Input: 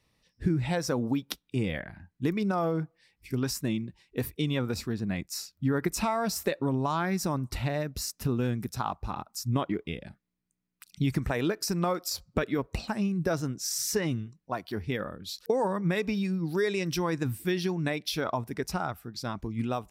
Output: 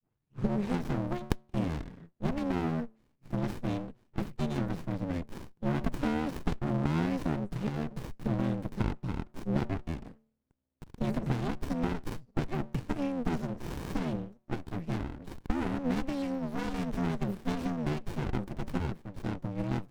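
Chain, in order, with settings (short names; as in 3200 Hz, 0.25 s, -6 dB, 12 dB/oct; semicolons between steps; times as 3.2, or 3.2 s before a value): tape start at the beginning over 0.61 s; de-hum 142.3 Hz, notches 2; frequency shift +79 Hz; running maximum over 65 samples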